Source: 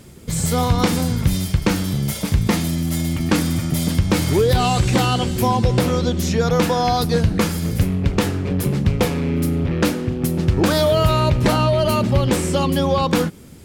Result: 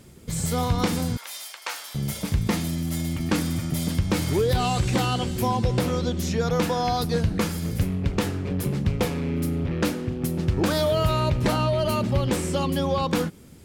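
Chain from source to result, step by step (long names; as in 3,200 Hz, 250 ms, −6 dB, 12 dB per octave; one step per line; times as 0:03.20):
0:01.17–0:01.95: high-pass filter 730 Hz 24 dB per octave
level −6 dB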